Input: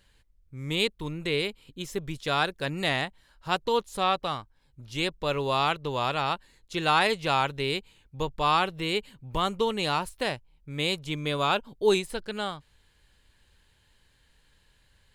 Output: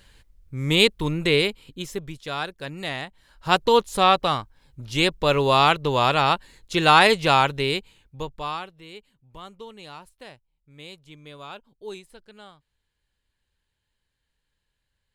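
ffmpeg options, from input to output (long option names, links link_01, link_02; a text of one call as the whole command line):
ffmpeg -i in.wav -af "volume=20.5dB,afade=type=out:start_time=1.21:duration=0.97:silence=0.237137,afade=type=in:start_time=3.06:duration=0.48:silence=0.266073,afade=type=out:start_time=7.2:duration=1.04:silence=0.316228,afade=type=out:start_time=8.24:duration=0.48:silence=0.237137" out.wav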